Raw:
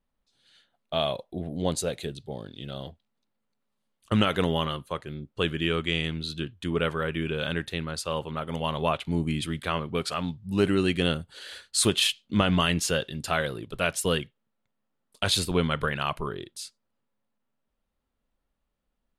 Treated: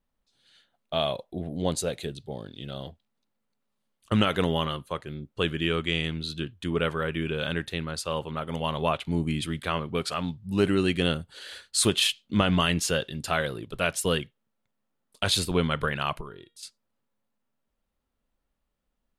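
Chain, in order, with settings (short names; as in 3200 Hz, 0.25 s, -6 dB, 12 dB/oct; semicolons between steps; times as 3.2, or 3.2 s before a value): 16.21–16.63 resonator 470 Hz, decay 0.31 s, harmonics all, mix 70%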